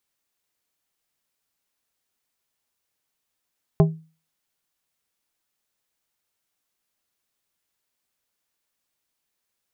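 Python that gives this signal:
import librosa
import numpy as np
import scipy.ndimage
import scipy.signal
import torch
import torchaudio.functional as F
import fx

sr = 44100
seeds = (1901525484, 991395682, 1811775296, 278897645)

y = fx.strike_glass(sr, length_s=0.89, level_db=-9.5, body='plate', hz=160.0, decay_s=0.35, tilt_db=5, modes=5)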